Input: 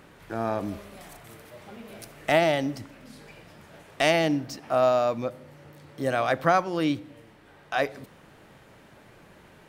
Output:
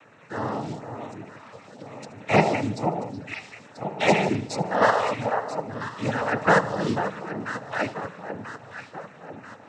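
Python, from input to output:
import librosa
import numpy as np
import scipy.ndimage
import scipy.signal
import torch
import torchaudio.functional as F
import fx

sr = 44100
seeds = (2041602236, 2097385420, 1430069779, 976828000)

p1 = fx.spec_quant(x, sr, step_db=30)
p2 = fx.level_steps(p1, sr, step_db=21)
p3 = p1 + (p2 * 10.0 ** (1.5 / 20.0))
p4 = fx.notch_comb(p3, sr, f0_hz=380.0)
p5 = p4 + fx.echo_alternate(p4, sr, ms=493, hz=1200.0, feedback_pct=71, wet_db=-7.5, dry=0)
p6 = fx.noise_vocoder(p5, sr, seeds[0], bands=12)
y = fx.echo_feedback(p6, sr, ms=75, feedback_pct=57, wet_db=-20.0)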